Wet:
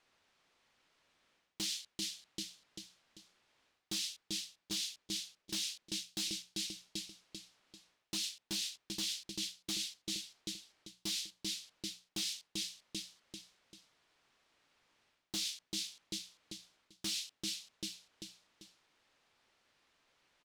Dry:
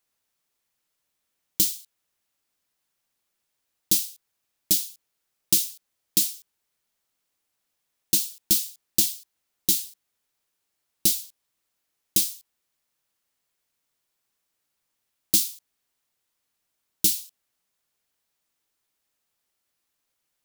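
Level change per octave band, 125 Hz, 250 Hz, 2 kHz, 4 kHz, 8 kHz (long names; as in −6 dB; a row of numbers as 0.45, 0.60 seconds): −10.0, −7.0, −1.0, −5.0, −14.0 decibels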